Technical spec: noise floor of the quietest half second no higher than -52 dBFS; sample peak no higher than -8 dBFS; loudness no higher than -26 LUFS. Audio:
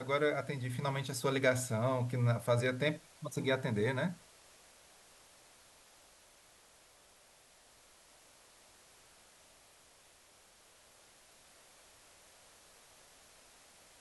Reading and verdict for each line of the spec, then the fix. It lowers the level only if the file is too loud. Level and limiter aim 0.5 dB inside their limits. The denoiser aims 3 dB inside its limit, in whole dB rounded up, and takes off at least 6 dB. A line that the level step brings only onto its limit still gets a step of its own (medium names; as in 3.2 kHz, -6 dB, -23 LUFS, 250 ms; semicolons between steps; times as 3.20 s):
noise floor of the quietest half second -63 dBFS: pass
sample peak -16.5 dBFS: pass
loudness -34.0 LUFS: pass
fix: none needed